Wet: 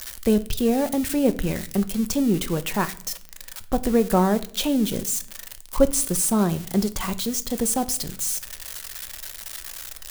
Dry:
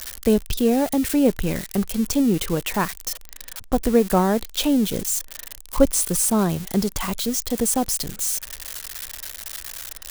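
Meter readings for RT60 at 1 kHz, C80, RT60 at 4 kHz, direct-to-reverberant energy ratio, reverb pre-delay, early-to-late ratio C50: 0.50 s, 21.5 dB, 0.45 s, 10.5 dB, 5 ms, 18.0 dB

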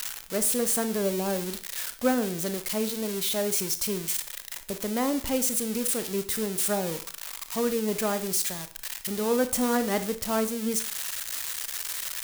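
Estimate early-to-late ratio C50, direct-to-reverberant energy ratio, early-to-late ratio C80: 13.0 dB, 10.0 dB, 18.0 dB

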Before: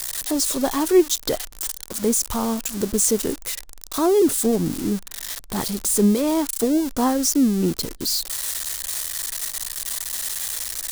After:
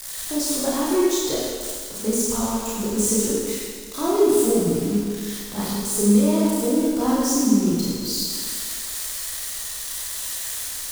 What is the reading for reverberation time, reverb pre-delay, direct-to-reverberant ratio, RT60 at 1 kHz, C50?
1.8 s, 29 ms, -7.0 dB, 1.8 s, -2.5 dB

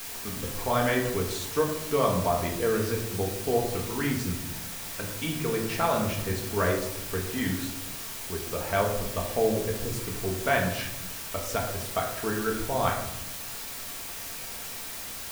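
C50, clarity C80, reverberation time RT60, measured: 6.0 dB, 8.5 dB, 0.85 s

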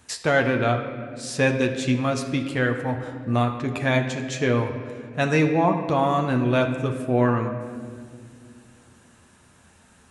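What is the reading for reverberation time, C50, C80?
2.1 s, 8.0 dB, 9.0 dB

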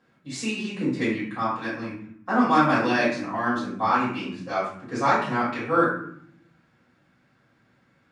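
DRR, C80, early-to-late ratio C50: -11.0 dB, 7.0 dB, 2.5 dB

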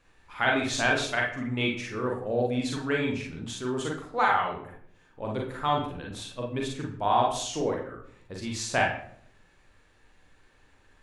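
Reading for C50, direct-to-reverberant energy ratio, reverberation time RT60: 3.5 dB, -1.5 dB, 0.65 s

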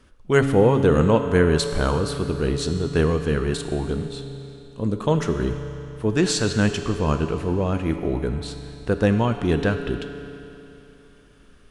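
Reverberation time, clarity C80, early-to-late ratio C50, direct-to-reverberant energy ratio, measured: 3.0 s, 8.5 dB, 7.5 dB, 7.0 dB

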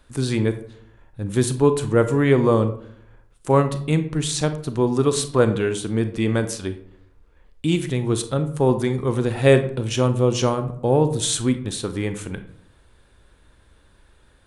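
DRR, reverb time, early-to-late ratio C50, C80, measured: 9.5 dB, 0.65 s, 12.0 dB, 15.0 dB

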